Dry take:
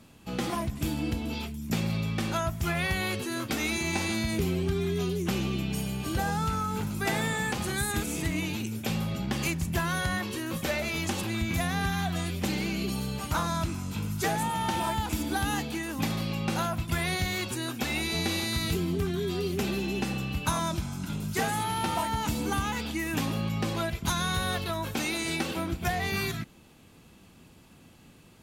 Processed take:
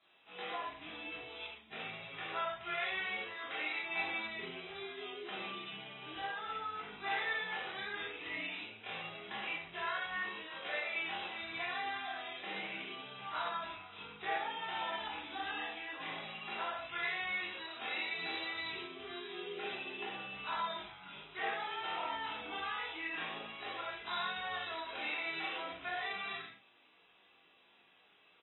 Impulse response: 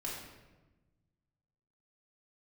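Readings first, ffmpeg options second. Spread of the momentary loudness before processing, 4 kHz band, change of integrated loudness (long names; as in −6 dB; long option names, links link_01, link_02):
4 LU, −7.0 dB, −9.5 dB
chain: -filter_complex "[0:a]acrossover=split=4000[link_01][link_02];[link_02]acompressor=threshold=-51dB:ratio=4:attack=1:release=60[link_03];[link_01][link_03]amix=inputs=2:normalize=0,highpass=frequency=370:poles=1,highshelf=frequency=3000:gain=10.5,flanger=delay=20:depth=5.9:speed=0.29,acrossover=split=480 5900:gain=0.158 1 0.0891[link_04][link_05][link_06];[link_04][link_05][link_06]amix=inputs=3:normalize=0,asplit=2[link_07][link_08];[link_08]adelay=39,volume=-7.5dB[link_09];[link_07][link_09]amix=inputs=2:normalize=0[link_10];[1:a]atrim=start_sample=2205,afade=type=out:start_time=0.19:duration=0.01,atrim=end_sample=8820,asetrate=48510,aresample=44100[link_11];[link_10][link_11]afir=irnorm=-1:irlink=0,volume=-5dB" -ar 24000 -c:a aac -b:a 16k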